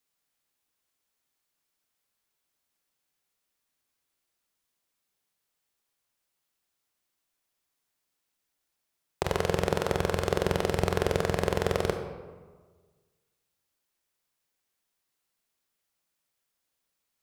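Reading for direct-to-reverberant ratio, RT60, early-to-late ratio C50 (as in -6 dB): 5.0 dB, 1.4 s, 6.5 dB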